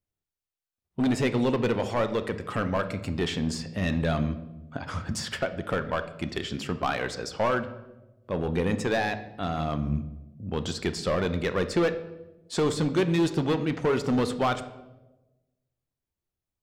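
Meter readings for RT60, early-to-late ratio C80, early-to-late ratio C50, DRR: 1.1 s, 15.0 dB, 12.5 dB, 9.0 dB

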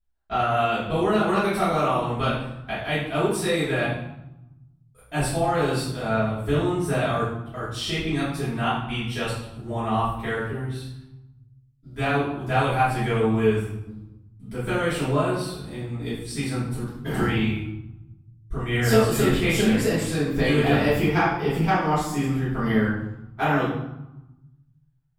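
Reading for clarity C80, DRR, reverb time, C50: 5.0 dB, -13.5 dB, 0.90 s, 1.0 dB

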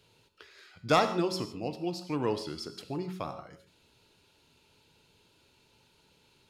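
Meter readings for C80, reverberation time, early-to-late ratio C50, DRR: 13.0 dB, no single decay rate, 10.5 dB, 8.5 dB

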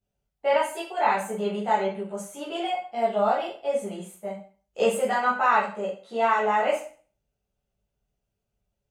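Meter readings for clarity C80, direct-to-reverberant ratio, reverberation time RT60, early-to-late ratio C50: 10.5 dB, -9.0 dB, 0.40 s, 5.0 dB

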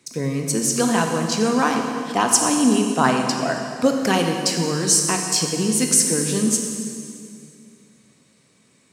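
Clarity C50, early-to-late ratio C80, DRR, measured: 3.5 dB, 4.5 dB, 2.5 dB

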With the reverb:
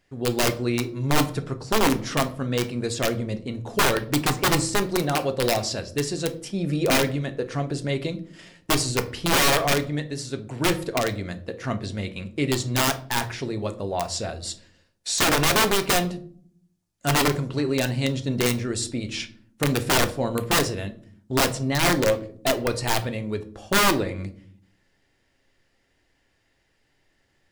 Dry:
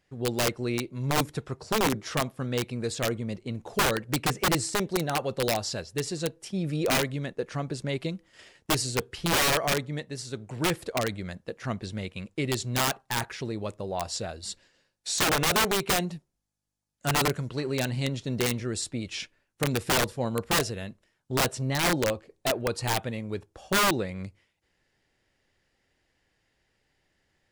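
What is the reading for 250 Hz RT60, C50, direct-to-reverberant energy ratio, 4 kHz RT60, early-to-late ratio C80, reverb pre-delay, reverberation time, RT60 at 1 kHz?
1.0 s, 15.5 dB, 7.5 dB, 0.30 s, 19.5 dB, 3 ms, 0.55 s, 0.45 s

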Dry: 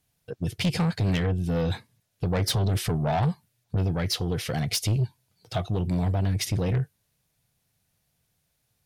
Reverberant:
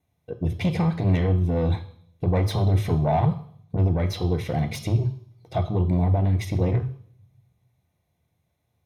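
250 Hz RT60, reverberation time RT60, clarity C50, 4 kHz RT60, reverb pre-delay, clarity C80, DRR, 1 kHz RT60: 0.70 s, 0.60 s, 13.0 dB, 0.70 s, 3 ms, 16.5 dB, 8.0 dB, 0.55 s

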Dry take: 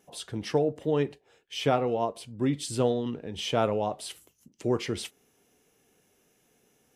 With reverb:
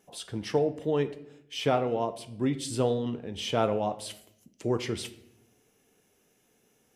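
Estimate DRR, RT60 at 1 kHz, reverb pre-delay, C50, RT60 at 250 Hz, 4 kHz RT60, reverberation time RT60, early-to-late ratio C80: 11.0 dB, 0.70 s, 5 ms, 15.0 dB, 1.2 s, 0.60 s, 0.80 s, 17.5 dB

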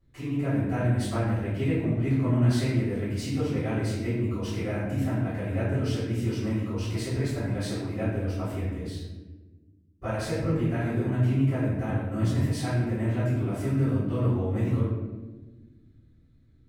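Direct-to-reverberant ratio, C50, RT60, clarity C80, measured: -15.5 dB, -0.5 dB, 1.3 s, 2.5 dB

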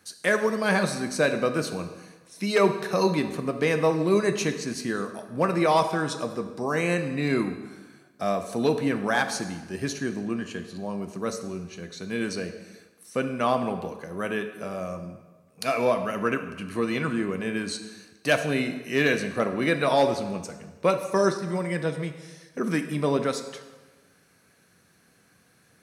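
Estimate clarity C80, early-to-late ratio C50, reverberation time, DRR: 11.0 dB, 9.5 dB, 1.3 s, 7.0 dB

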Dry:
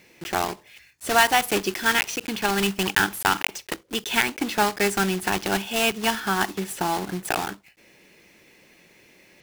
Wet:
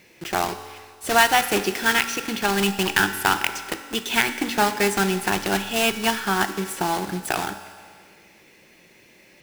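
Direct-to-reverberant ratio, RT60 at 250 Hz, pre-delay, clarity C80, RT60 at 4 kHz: 9.0 dB, 1.8 s, 4 ms, 12.0 dB, 1.9 s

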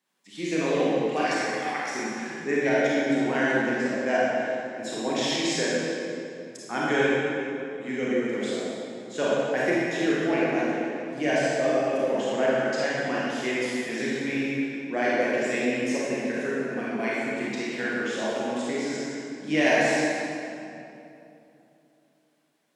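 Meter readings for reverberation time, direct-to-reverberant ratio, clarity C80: 2.9 s, -7.5 dB, -2.5 dB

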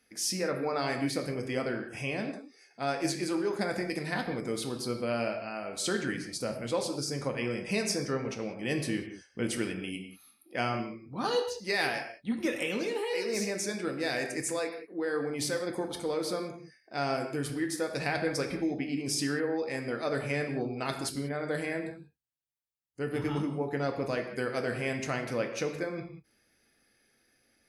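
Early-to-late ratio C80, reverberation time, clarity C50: 9.0 dB, no single decay rate, 7.5 dB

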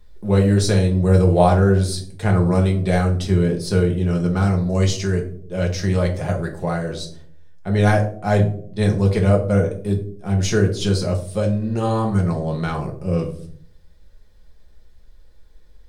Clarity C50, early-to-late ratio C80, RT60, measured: 10.0 dB, 14.5 dB, no single decay rate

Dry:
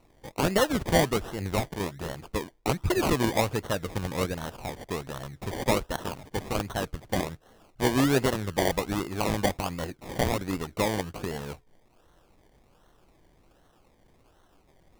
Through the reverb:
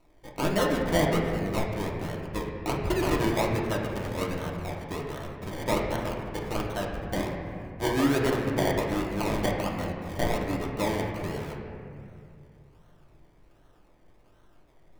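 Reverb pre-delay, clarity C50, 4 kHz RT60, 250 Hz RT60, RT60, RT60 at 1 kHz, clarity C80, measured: 3 ms, 2.5 dB, 1.7 s, 2.9 s, 2.4 s, 2.2 s, 3.5 dB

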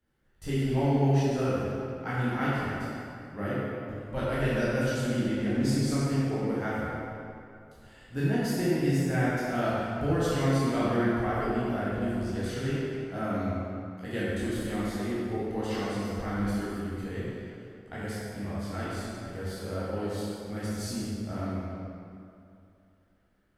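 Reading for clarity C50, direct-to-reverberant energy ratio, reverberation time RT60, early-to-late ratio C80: -4.5 dB, -10.5 dB, 2.6 s, -3.0 dB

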